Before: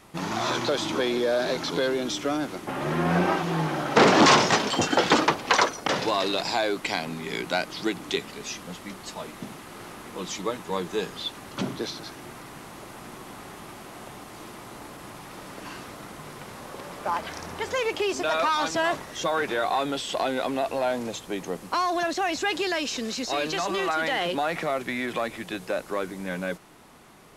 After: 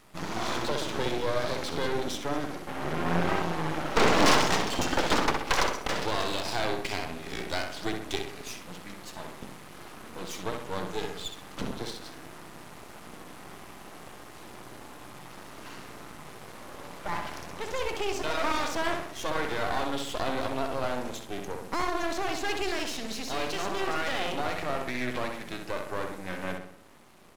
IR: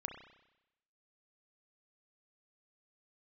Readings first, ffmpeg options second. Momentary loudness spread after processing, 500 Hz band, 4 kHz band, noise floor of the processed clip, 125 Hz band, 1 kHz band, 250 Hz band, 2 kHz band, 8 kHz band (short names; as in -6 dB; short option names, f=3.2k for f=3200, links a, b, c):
19 LU, -5.0 dB, -4.5 dB, -46 dBFS, -3.0 dB, -5.0 dB, -5.0 dB, -4.0 dB, -4.0 dB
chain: -filter_complex "[0:a]asplit=2[a][b];[b]adelay=64,lowpass=f=2.6k:p=1,volume=-4dB,asplit=2[c][d];[d]adelay=64,lowpass=f=2.6k:p=1,volume=0.52,asplit=2[e][f];[f]adelay=64,lowpass=f=2.6k:p=1,volume=0.52,asplit=2[g][h];[h]adelay=64,lowpass=f=2.6k:p=1,volume=0.52,asplit=2[i][j];[j]adelay=64,lowpass=f=2.6k:p=1,volume=0.52,asplit=2[k][l];[l]adelay=64,lowpass=f=2.6k:p=1,volume=0.52,asplit=2[m][n];[n]adelay=64,lowpass=f=2.6k:p=1,volume=0.52[o];[c][e][g][i][k][m][o]amix=inputs=7:normalize=0[p];[a][p]amix=inputs=2:normalize=0,aeval=exprs='max(val(0),0)':c=same,volume=-1.5dB"